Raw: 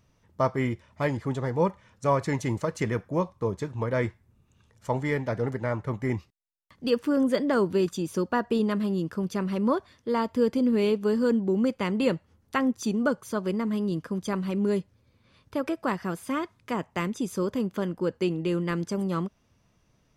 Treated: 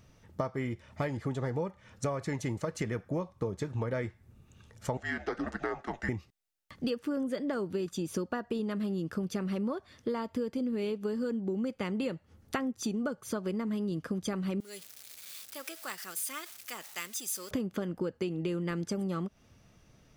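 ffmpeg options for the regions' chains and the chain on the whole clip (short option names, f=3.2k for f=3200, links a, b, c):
-filter_complex "[0:a]asettb=1/sr,asplit=3[a][b][c];[a]atrim=end=4.974[d];[b]atrim=start=4.97:end=6.09,asetpts=PTS-STARTPTS,afade=t=in:d=0.004:c=qsin,afade=t=out:st=1.116:d=0.004:c=qsin,highpass=680,lowpass=6.7k,afreqshift=-190[e];[c]atrim=start=6.086[f];[d][e]acrossfade=d=0.004:c1=hsin:c2=qsin[g];[g][f]acrossfade=d=0.004:c1=qsin:c2=hsin,asettb=1/sr,asplit=3[h][i][j];[h]atrim=end=14.604[k];[i]atrim=start=14.6:end=17.51,asetpts=PTS-STARTPTS,afade=t=in:d=0.004:c=qsin,afade=t=out:st=2.906:d=0.004:c=qsin,aeval=exprs='val(0)+0.5*0.00891*sgn(val(0))':c=same,aderivative[l];[j]atrim=start=17.506[m];[k][l]acrossfade=d=0.004:c1=hsin:c2=qsin[n];[n][m]acrossfade=d=0.004:c1=qsin:c2=hsin,bandreject=f=1k:w=8.4,acompressor=threshold=-35dB:ratio=16,volume=5.5dB"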